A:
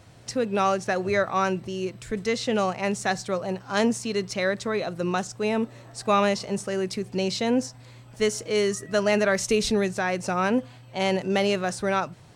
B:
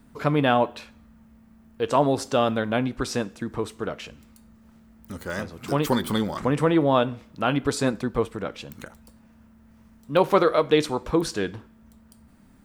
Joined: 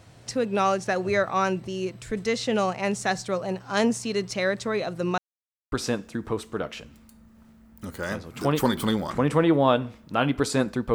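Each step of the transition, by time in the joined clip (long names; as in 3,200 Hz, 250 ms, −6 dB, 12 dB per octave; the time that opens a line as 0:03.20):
A
0:05.18–0:05.72: silence
0:05.72: continue with B from 0:02.99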